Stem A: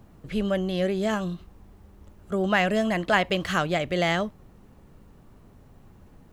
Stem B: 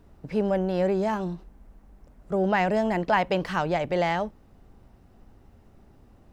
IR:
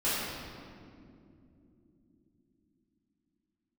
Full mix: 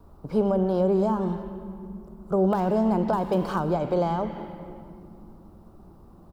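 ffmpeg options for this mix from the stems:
-filter_complex "[0:a]aeval=exprs='(mod(3.98*val(0)+1,2)-1)/3.98':c=same,volume=-18dB,asplit=2[a][b];[b]volume=-9.5dB[c];[1:a]highshelf=f=1.5k:t=q:w=3:g=-8.5,aexciter=amount=1.9:drive=5.4:freq=3.7k,volume=-1,adelay=1.8,volume=2dB,asplit=2[d][e];[e]volume=-23.5dB[f];[2:a]atrim=start_sample=2205[g];[c][f]amix=inputs=2:normalize=0[h];[h][g]afir=irnorm=-1:irlink=0[i];[a][d][i]amix=inputs=3:normalize=0,acrossover=split=450[j][k];[k]acompressor=threshold=-27dB:ratio=6[l];[j][l]amix=inputs=2:normalize=0"

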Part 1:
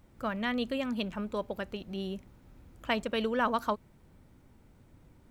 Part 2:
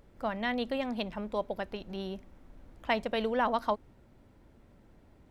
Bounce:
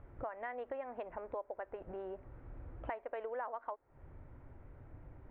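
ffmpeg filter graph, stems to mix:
-filter_complex "[0:a]lowshelf=f=340:g=7,acompressor=threshold=-40dB:ratio=2.5,volume=0dB[a];[1:a]acrossover=split=380 2100:gain=0.0708 1 0.2[b][c][d];[b][c][d]amix=inputs=3:normalize=0,volume=-1,volume=1.5dB,asplit=2[e][f];[f]apad=whole_len=233981[g];[a][g]sidechaincompress=threshold=-45dB:ratio=8:attack=7.7:release=164[h];[h][e]amix=inputs=2:normalize=0,lowpass=f=2.2k:w=0.5412,lowpass=f=2.2k:w=1.3066,equalizer=f=200:w=3:g=-15,acompressor=threshold=-39dB:ratio=5"

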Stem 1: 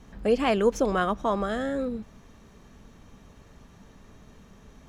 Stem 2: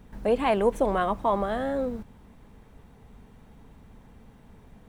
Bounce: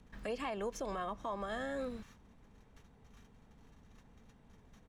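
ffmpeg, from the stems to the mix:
-filter_complex "[0:a]highpass=f=1.2k:w=0.5412,highpass=f=1.2k:w=1.3066,acompressor=threshold=-43dB:ratio=4,volume=0.5dB[a];[1:a]lowpass=8.1k,adelay=2,volume=-10dB,asplit=2[b][c];[c]apad=whole_len=215398[d];[a][d]sidechaingate=range=-33dB:threshold=-57dB:ratio=16:detection=peak[e];[e][b]amix=inputs=2:normalize=0,alimiter=level_in=6dB:limit=-24dB:level=0:latency=1:release=210,volume=-6dB"

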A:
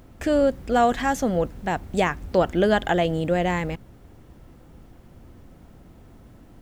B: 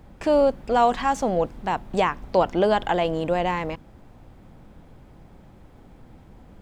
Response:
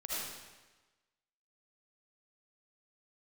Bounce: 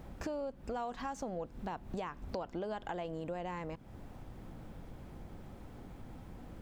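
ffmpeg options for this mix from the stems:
-filter_complex "[0:a]acompressor=threshold=-27dB:ratio=6,volume=-6dB[a];[1:a]acompressor=threshold=-32dB:ratio=2,volume=-1.5dB,asplit=2[b][c];[c]apad=whole_len=291877[d];[a][d]sidechaincompress=threshold=-34dB:ratio=8:attack=16:release=401[e];[e][b]amix=inputs=2:normalize=0,acompressor=threshold=-44dB:ratio=2"

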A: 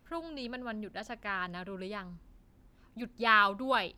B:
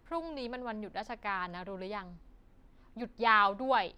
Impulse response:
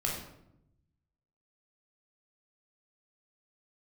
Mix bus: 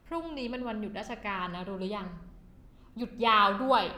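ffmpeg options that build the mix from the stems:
-filter_complex "[0:a]volume=-2.5dB,asplit=2[a][b];[b]volume=-8.5dB[c];[1:a]volume=0dB[d];[2:a]atrim=start_sample=2205[e];[c][e]afir=irnorm=-1:irlink=0[f];[a][d][f]amix=inputs=3:normalize=0"

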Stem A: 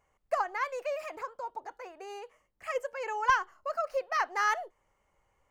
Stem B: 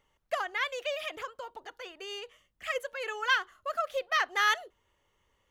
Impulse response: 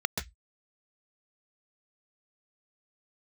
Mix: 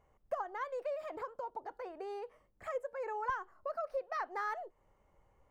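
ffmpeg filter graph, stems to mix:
-filter_complex "[0:a]tiltshelf=f=1.3k:g=7.5,volume=-1.5dB[a];[1:a]bandreject=f=3.4k:w=9.9,volume=-17dB[b];[a][b]amix=inputs=2:normalize=0,acompressor=threshold=-42dB:ratio=2"

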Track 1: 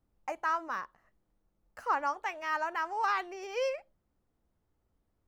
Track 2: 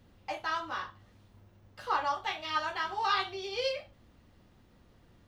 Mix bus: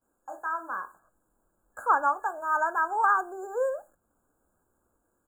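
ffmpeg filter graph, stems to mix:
-filter_complex "[0:a]lowshelf=f=350:g=-8,dynaudnorm=f=330:g=5:m=11.5dB,volume=-4.5dB,asplit=2[a][b];[1:a]highpass=f=270:w=0.5412,highpass=f=270:w=1.3066,acompressor=threshold=-57dB:ratio=1.5,acrusher=bits=10:mix=0:aa=0.000001,adelay=15,volume=1dB[c];[b]apad=whole_len=233507[d];[c][d]sidechaingate=range=-11dB:threshold=-54dB:ratio=16:detection=peak[e];[a][e]amix=inputs=2:normalize=0,afftfilt=real='re*(1-between(b*sr/4096,1700,6700))':imag='im*(1-between(b*sr/4096,1700,6700))':win_size=4096:overlap=0.75,equalizer=f=4.2k:t=o:w=1.6:g=7.5"

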